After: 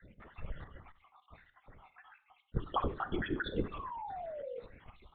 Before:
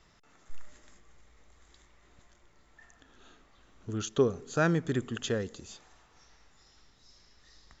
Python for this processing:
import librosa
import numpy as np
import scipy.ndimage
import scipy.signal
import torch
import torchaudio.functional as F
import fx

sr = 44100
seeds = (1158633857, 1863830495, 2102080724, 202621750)

y = fx.spec_dropout(x, sr, seeds[0], share_pct=75)
y = scipy.signal.sosfilt(scipy.signal.butter(2, 2200.0, 'lowpass', fs=sr, output='sos'), y)
y = fx.hum_notches(y, sr, base_hz=50, count=9)
y = fx.over_compress(y, sr, threshold_db=-39.0, ratio=-0.5)
y = fx.stretch_vocoder(y, sr, factor=0.66)
y = fx.spec_paint(y, sr, seeds[1], shape='fall', start_s=3.72, length_s=0.88, low_hz=460.0, high_hz=1200.0, level_db=-50.0)
y = fx.rev_schroeder(y, sr, rt60_s=0.44, comb_ms=31, drr_db=12.0)
y = fx.lpc_vocoder(y, sr, seeds[2], excitation='whisper', order=16)
y = y * librosa.db_to_amplitude(7.5)